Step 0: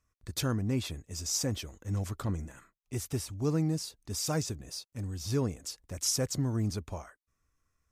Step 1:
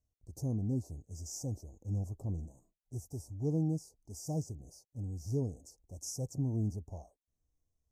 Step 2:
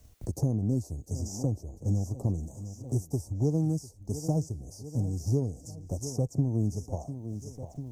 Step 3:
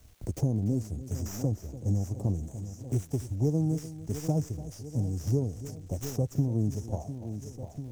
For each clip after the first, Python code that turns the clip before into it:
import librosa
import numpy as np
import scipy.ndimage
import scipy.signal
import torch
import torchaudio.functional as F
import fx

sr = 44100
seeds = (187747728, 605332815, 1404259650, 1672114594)

y1 = scipy.signal.sosfilt(scipy.signal.ellip(3, 1.0, 40, [780.0, 5900.0], 'bandstop', fs=sr, output='sos'), x)
y1 = fx.hpss(y1, sr, part='percussive', gain_db=-8)
y1 = fx.high_shelf(y1, sr, hz=4600.0, db=-6.0)
y1 = y1 * 10.0 ** (-2.0 / 20.0)
y2 = fx.transient(y1, sr, attack_db=6, sustain_db=-1)
y2 = fx.echo_feedback(y2, sr, ms=697, feedback_pct=44, wet_db=-20.0)
y2 = fx.band_squash(y2, sr, depth_pct=70)
y2 = y2 * 10.0 ** (5.5 / 20.0)
y3 = fx.tracing_dist(y2, sr, depth_ms=0.079)
y3 = fx.dmg_crackle(y3, sr, seeds[0], per_s=360.0, level_db=-53.0)
y3 = y3 + 10.0 ** (-15.0 / 20.0) * np.pad(y3, (int(292 * sr / 1000.0), 0))[:len(y3)]